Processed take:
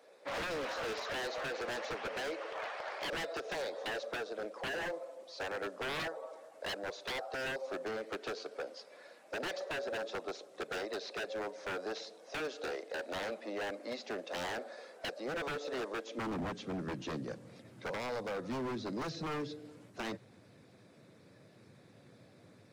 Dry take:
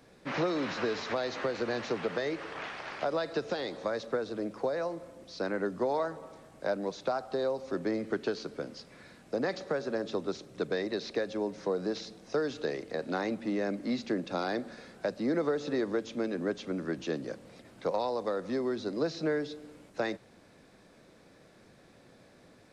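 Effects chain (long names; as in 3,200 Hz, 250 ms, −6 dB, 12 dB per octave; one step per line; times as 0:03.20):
spectral magnitudes quantised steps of 15 dB
high-pass filter sweep 570 Hz → 110 Hz, 0:16.05–0:16.57
wave folding −29.5 dBFS
level −3 dB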